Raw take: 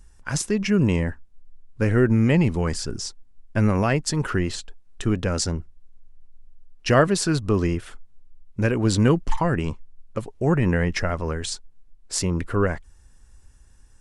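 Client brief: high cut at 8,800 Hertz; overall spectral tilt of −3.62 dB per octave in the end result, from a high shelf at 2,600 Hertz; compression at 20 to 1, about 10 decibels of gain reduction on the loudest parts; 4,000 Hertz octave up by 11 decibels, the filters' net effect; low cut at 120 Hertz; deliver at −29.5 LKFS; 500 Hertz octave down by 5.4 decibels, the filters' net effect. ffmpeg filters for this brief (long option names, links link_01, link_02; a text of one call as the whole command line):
ffmpeg -i in.wav -af "highpass=120,lowpass=8800,equalizer=frequency=500:width_type=o:gain=-7.5,highshelf=frequency=2600:gain=6,equalizer=frequency=4000:width_type=o:gain=9,acompressor=threshold=-23dB:ratio=20,volume=-0.5dB" out.wav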